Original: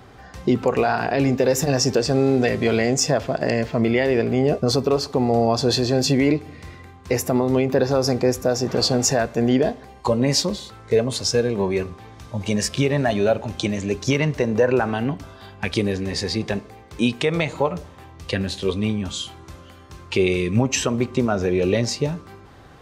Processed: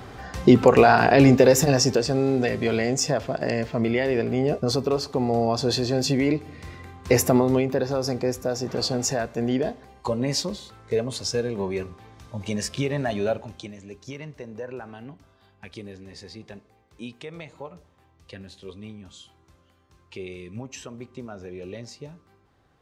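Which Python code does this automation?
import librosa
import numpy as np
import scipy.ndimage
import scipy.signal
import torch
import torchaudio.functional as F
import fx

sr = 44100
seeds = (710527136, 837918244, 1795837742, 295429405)

y = fx.gain(x, sr, db=fx.line((1.3, 5.0), (2.15, -4.0), (6.29, -4.0), (7.22, 3.5), (7.81, -6.0), (13.33, -6.0), (13.75, -17.5)))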